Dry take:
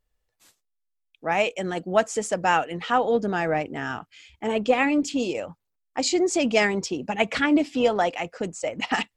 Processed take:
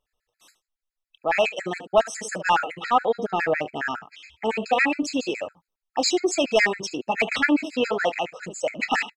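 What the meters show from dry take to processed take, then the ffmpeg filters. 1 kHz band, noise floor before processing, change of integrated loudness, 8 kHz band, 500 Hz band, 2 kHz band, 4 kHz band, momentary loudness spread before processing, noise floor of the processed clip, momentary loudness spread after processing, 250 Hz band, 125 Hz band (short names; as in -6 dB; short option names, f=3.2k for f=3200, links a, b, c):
+1.0 dB, -78 dBFS, 0.0 dB, 0.0 dB, -0.5 dB, +2.5 dB, +2.0 dB, 10 LU, under -85 dBFS, 10 LU, -2.5 dB, -6.0 dB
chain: -filter_complex "[0:a]aecho=1:1:27|72:0.158|0.168,asplit=2[a][b];[b]highpass=f=720:p=1,volume=12dB,asoftclip=type=tanh:threshold=-5dB[c];[a][c]amix=inputs=2:normalize=0,lowpass=f=4.6k:p=1,volume=-6dB,afftfilt=real='re*gt(sin(2*PI*7.2*pts/sr)*(1-2*mod(floor(b*sr/1024/1300),2)),0)':imag='im*gt(sin(2*PI*7.2*pts/sr)*(1-2*mod(floor(b*sr/1024/1300),2)),0)':win_size=1024:overlap=0.75"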